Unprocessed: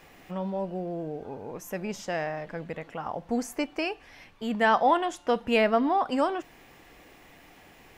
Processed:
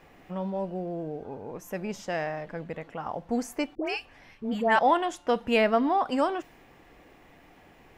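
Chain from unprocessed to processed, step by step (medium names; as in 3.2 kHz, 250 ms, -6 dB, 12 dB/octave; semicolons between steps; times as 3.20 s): 3.75–4.79 s: phase dispersion highs, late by 109 ms, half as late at 1.1 kHz; tape noise reduction on one side only decoder only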